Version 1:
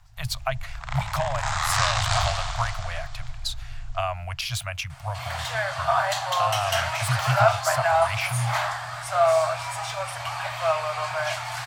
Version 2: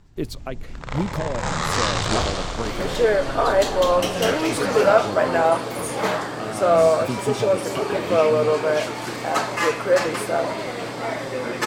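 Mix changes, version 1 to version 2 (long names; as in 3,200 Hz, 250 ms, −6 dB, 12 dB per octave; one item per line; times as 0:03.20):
speech −8.5 dB
second sound: entry −2.50 s
master: remove Chebyshev band-stop filter 130–680 Hz, order 4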